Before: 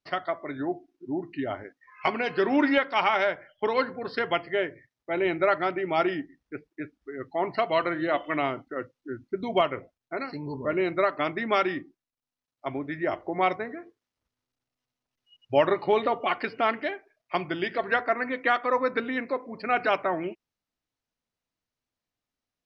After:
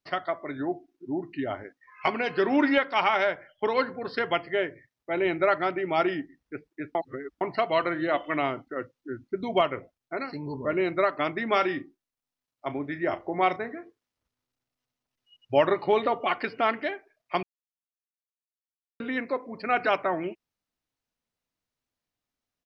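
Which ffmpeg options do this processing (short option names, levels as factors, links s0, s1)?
-filter_complex "[0:a]asplit=3[s0][s1][s2];[s0]afade=t=out:st=11.46:d=0.02[s3];[s1]asplit=2[s4][s5];[s5]adelay=35,volume=0.224[s6];[s4][s6]amix=inputs=2:normalize=0,afade=t=in:st=11.46:d=0.02,afade=t=out:st=13.79:d=0.02[s7];[s2]afade=t=in:st=13.79:d=0.02[s8];[s3][s7][s8]amix=inputs=3:normalize=0,asplit=5[s9][s10][s11][s12][s13];[s9]atrim=end=6.952[s14];[s10]atrim=start=6.948:end=7.412,asetpts=PTS-STARTPTS,areverse[s15];[s11]atrim=start=7.408:end=17.43,asetpts=PTS-STARTPTS,afade=t=out:st=10.018:d=0.004:c=hsin[s16];[s12]atrim=start=17.43:end=19,asetpts=PTS-STARTPTS,volume=0[s17];[s13]atrim=start=19,asetpts=PTS-STARTPTS,afade=t=in:d=0.004:c=hsin[s18];[s14][s15]acrossfade=d=0.004:c1=hsin:c2=hsin[s19];[s16][s17][s18]concat=n=3:v=0:a=1[s20];[s19][s20]acrossfade=d=0.004:c1=hsin:c2=hsin"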